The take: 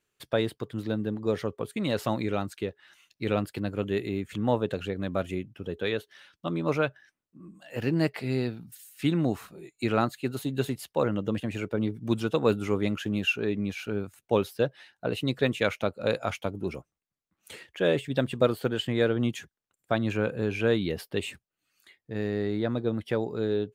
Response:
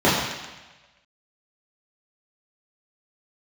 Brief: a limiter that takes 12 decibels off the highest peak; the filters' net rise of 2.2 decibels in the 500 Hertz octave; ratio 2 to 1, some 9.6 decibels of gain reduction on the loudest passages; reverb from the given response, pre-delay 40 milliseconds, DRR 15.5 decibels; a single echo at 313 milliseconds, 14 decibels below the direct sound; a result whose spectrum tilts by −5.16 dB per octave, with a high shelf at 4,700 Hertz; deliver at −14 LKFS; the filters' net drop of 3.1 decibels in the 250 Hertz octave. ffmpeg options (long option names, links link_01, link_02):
-filter_complex "[0:a]equalizer=frequency=250:width_type=o:gain=-5.5,equalizer=frequency=500:width_type=o:gain=4,highshelf=frequency=4700:gain=5.5,acompressor=threshold=-34dB:ratio=2,alimiter=level_in=3.5dB:limit=-24dB:level=0:latency=1,volume=-3.5dB,aecho=1:1:313:0.2,asplit=2[link_01][link_02];[1:a]atrim=start_sample=2205,adelay=40[link_03];[link_02][link_03]afir=irnorm=-1:irlink=0,volume=-38.5dB[link_04];[link_01][link_04]amix=inputs=2:normalize=0,volume=25dB"